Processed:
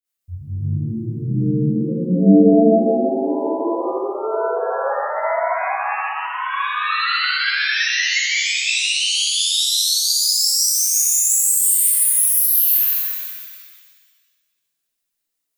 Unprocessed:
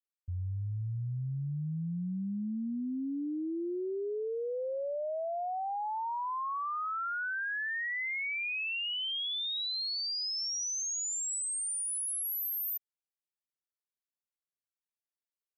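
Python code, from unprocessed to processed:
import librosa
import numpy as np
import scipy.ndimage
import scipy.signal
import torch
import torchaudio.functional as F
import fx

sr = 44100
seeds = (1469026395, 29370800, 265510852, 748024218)

y = fx.high_shelf(x, sr, hz=5700.0, db=8.0)
y = fx.notch(y, sr, hz=900.0, q=6.2)
y = fx.room_flutter(y, sr, wall_m=10.6, rt60_s=1.3)
y = fx.dynamic_eq(y, sr, hz=190.0, q=3.7, threshold_db=-47.0, ratio=4.0, max_db=7)
y = fx.harmonic_tremolo(y, sr, hz=5.7, depth_pct=70, crossover_hz=420.0)
y = fx.rev_shimmer(y, sr, seeds[0], rt60_s=1.5, semitones=7, shimmer_db=-2, drr_db=-6.5)
y = y * 10.0 ** (4.0 / 20.0)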